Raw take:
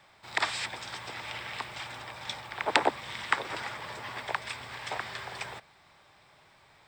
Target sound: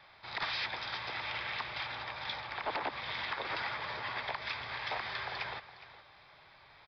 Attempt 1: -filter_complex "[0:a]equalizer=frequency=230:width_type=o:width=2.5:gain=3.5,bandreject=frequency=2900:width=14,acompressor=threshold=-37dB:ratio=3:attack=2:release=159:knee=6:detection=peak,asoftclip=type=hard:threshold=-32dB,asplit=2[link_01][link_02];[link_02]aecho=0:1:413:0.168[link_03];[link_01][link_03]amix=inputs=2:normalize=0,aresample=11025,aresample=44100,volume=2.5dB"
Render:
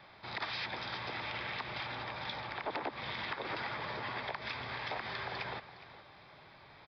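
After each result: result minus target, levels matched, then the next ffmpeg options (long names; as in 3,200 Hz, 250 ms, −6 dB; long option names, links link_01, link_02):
250 Hz band +7.0 dB; downward compressor: peak gain reduction +5.5 dB
-filter_complex "[0:a]equalizer=frequency=230:width_type=o:width=2.5:gain=-6.5,bandreject=frequency=2900:width=14,acompressor=threshold=-37dB:ratio=3:attack=2:release=159:knee=6:detection=peak,asoftclip=type=hard:threshold=-32dB,asplit=2[link_01][link_02];[link_02]aecho=0:1:413:0.168[link_03];[link_01][link_03]amix=inputs=2:normalize=0,aresample=11025,aresample=44100,volume=2.5dB"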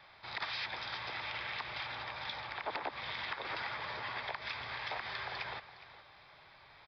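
downward compressor: peak gain reduction +5 dB
-filter_complex "[0:a]equalizer=frequency=230:width_type=o:width=2.5:gain=-6.5,bandreject=frequency=2900:width=14,acompressor=threshold=-29.5dB:ratio=3:attack=2:release=159:knee=6:detection=peak,asoftclip=type=hard:threshold=-32dB,asplit=2[link_01][link_02];[link_02]aecho=0:1:413:0.168[link_03];[link_01][link_03]amix=inputs=2:normalize=0,aresample=11025,aresample=44100,volume=2.5dB"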